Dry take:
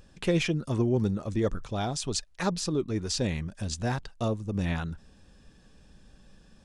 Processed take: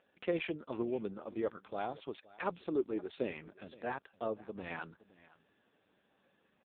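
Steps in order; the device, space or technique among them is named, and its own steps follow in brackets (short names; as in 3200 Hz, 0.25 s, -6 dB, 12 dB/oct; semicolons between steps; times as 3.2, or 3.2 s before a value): 2.58–3.3 dynamic EQ 340 Hz, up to +5 dB, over -42 dBFS, Q 1.7; satellite phone (BPF 380–3200 Hz; echo 0.519 s -20.5 dB; gain -3.5 dB; AMR-NB 5.9 kbps 8000 Hz)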